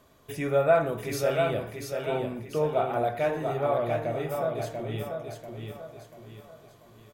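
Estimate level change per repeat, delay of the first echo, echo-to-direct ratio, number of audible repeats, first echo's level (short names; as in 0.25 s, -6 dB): -7.5 dB, 0.689 s, -4.0 dB, 4, -5.0 dB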